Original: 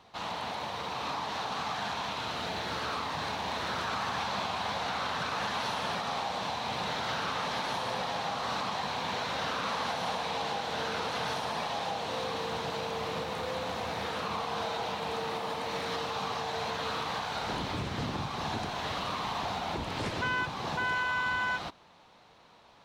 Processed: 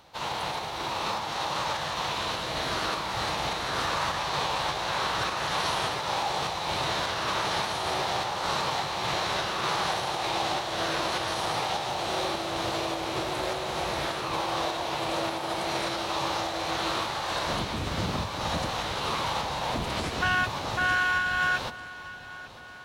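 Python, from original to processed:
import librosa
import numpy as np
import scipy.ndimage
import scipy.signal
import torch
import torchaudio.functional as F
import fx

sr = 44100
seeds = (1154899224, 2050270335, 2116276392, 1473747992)

p1 = fx.high_shelf(x, sr, hz=8800.0, db=12.0)
p2 = fx.pitch_keep_formants(p1, sr, semitones=-5.5)
p3 = fx.volume_shaper(p2, sr, bpm=102, per_beat=1, depth_db=-8, release_ms=215.0, shape='slow start')
p4 = p2 + (p3 * 10.0 ** (-1.0 / 20.0))
y = fx.echo_feedback(p4, sr, ms=897, feedback_pct=57, wet_db=-17.0)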